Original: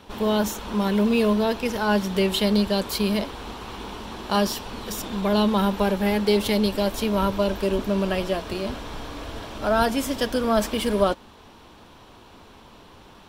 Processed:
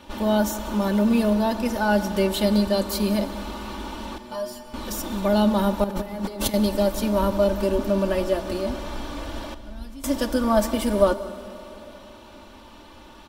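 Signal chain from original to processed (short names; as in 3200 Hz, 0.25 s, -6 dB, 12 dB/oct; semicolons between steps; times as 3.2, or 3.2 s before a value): 9.54–10.04 passive tone stack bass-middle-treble 10-0-1; comb 3.4 ms, depth 68%; dynamic EQ 2900 Hz, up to -7 dB, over -41 dBFS, Q 0.93; 4.18–4.74 metallic resonator 120 Hz, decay 0.31 s, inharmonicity 0.002; 5.84–6.54 negative-ratio compressor -28 dBFS, ratio -0.5; outdoor echo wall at 32 m, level -18 dB; plate-style reverb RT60 3.6 s, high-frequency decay 0.9×, DRR 13 dB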